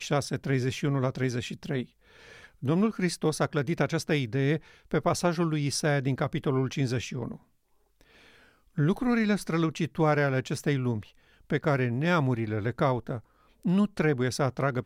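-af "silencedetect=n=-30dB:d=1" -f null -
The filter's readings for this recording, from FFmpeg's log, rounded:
silence_start: 7.32
silence_end: 8.78 | silence_duration: 1.46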